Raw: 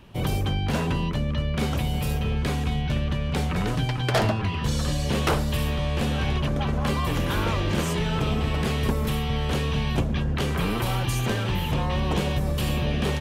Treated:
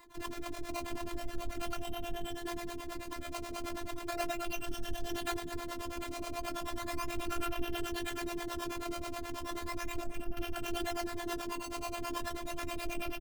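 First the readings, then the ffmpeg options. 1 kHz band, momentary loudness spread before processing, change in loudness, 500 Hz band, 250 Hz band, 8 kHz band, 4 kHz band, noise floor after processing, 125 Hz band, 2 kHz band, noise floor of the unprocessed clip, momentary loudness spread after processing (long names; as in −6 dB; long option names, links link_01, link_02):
−9.5 dB, 2 LU, −14.0 dB, −11.0 dB, −13.5 dB, −7.5 dB, −12.5 dB, −43 dBFS, −26.5 dB, −11.0 dB, −27 dBFS, 5 LU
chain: -filter_complex "[0:a]afftfilt=real='re*pow(10,16/40*sin(2*PI*(1*log(max(b,1)*sr/1024/100)/log(2)-(0.34)*(pts-256)/sr)))':imag='im*pow(10,16/40*sin(2*PI*(1*log(max(b,1)*sr/1024/100)/log(2)-(0.34)*(pts-256)/sr)))':win_size=1024:overlap=0.75,acrossover=split=3400[link_01][link_02];[link_02]acompressor=threshold=-40dB:ratio=4:attack=1:release=60[link_03];[link_01][link_03]amix=inputs=2:normalize=0,lowshelf=frequency=370:gain=-2.5,aresample=16000,volume=17dB,asoftclip=hard,volume=-17dB,aresample=44100,acrusher=samples=14:mix=1:aa=0.000001:lfo=1:lforange=22.4:lforate=0.36,asoftclip=type=tanh:threshold=-25.5dB,asplit=2[link_04][link_05];[link_05]adelay=238,lowpass=frequency=830:poles=1,volume=-8dB,asplit=2[link_06][link_07];[link_07]adelay=238,lowpass=frequency=830:poles=1,volume=0.46,asplit=2[link_08][link_09];[link_09]adelay=238,lowpass=frequency=830:poles=1,volume=0.46,asplit=2[link_10][link_11];[link_11]adelay=238,lowpass=frequency=830:poles=1,volume=0.46,asplit=2[link_12][link_13];[link_13]adelay=238,lowpass=frequency=830:poles=1,volume=0.46[link_14];[link_06][link_08][link_10][link_12][link_14]amix=inputs=5:normalize=0[link_15];[link_04][link_15]amix=inputs=2:normalize=0,afftfilt=real='hypot(re,im)*cos(PI*b)':imag='0':win_size=512:overlap=0.75,acrossover=split=440[link_16][link_17];[link_16]aeval=exprs='val(0)*(1-1/2+1/2*cos(2*PI*9.3*n/s))':channel_layout=same[link_18];[link_17]aeval=exprs='val(0)*(1-1/2-1/2*cos(2*PI*9.3*n/s))':channel_layout=same[link_19];[link_18][link_19]amix=inputs=2:normalize=0,volume=1dB"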